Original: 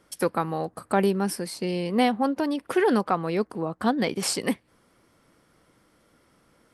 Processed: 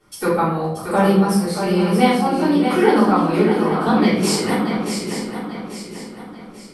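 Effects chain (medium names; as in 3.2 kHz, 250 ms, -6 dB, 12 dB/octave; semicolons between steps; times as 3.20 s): on a send: shuffle delay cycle 840 ms, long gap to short 3:1, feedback 40%, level -7 dB; on the sum: simulated room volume 130 m³, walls mixed, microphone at 3.5 m; trim -5.5 dB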